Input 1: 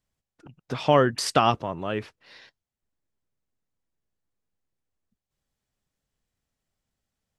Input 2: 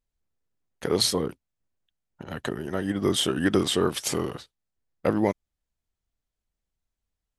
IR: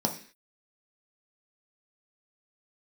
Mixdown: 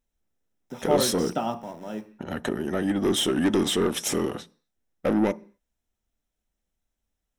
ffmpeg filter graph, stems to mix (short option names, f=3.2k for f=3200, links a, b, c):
-filter_complex "[0:a]aeval=exprs='val(0)*gte(abs(val(0)),0.0224)':c=same,volume=-16dB,asplit=2[a][b];[b]volume=-5dB[c];[1:a]asoftclip=type=tanh:threshold=-22.5dB,volume=2.5dB,asplit=2[d][e];[e]volume=-19.5dB[f];[2:a]atrim=start_sample=2205[g];[c][f]amix=inputs=2:normalize=0[h];[h][g]afir=irnorm=-1:irlink=0[i];[a][d][i]amix=inputs=3:normalize=0,bandreject=f=4.6k:w=6.7"